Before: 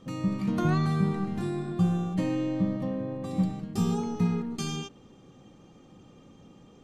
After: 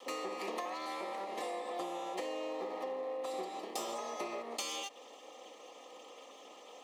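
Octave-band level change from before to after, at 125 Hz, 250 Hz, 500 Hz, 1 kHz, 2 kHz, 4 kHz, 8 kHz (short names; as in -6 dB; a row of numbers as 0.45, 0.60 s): under -35 dB, -21.0 dB, -3.0 dB, -1.0 dB, -3.5 dB, -0.5 dB, 0.0 dB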